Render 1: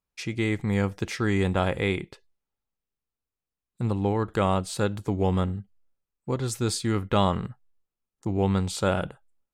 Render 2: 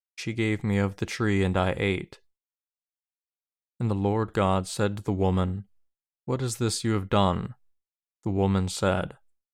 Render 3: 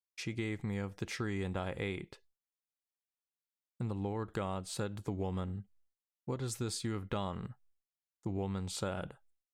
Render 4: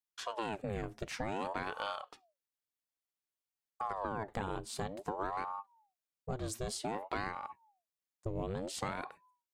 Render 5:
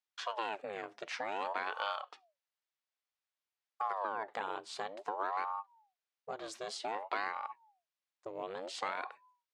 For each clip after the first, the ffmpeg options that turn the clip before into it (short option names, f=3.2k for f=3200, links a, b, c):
-af "agate=range=-33dB:threshold=-55dB:ratio=3:detection=peak"
-af "acompressor=threshold=-27dB:ratio=6,volume=-6dB"
-af "aeval=exprs='val(0)*sin(2*PI*610*n/s+610*0.65/0.54*sin(2*PI*0.54*n/s))':c=same,volume=1.5dB"
-af "highpass=590,lowpass=4.7k,volume=3dB"